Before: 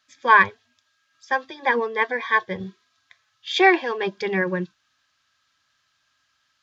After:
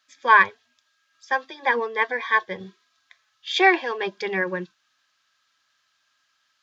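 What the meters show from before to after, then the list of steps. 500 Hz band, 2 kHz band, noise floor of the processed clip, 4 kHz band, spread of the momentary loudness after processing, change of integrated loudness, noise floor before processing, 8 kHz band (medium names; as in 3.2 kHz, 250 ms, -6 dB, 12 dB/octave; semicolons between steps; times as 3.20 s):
-2.5 dB, 0.0 dB, -70 dBFS, 0.0 dB, 18 LU, -0.5 dB, -70 dBFS, no reading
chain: high-pass 370 Hz 6 dB/octave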